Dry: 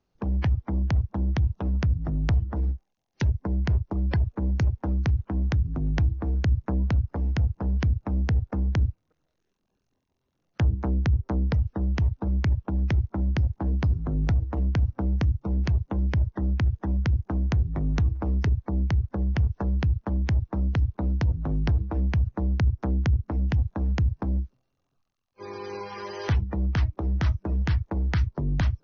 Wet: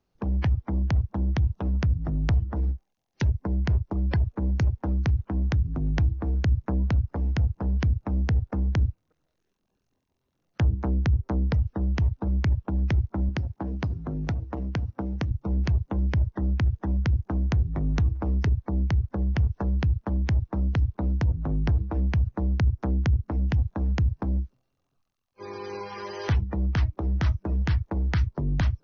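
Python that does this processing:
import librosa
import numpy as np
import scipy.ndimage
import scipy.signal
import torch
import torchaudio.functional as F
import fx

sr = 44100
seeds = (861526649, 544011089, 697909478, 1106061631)

y = fx.highpass(x, sr, hz=140.0, slope=6, at=(13.29, 15.31))
y = fx.dynamic_eq(y, sr, hz=4300.0, q=0.96, threshold_db=-55.0, ratio=4.0, max_db=-4, at=(21.13, 21.72))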